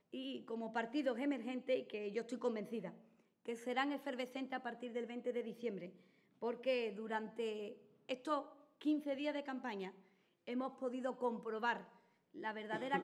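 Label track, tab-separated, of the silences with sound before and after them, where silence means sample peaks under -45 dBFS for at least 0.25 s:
2.900000	3.480000	silence
5.860000	6.430000	silence
7.710000	8.090000	silence
8.420000	8.810000	silence
9.890000	10.480000	silence
11.810000	12.370000	silence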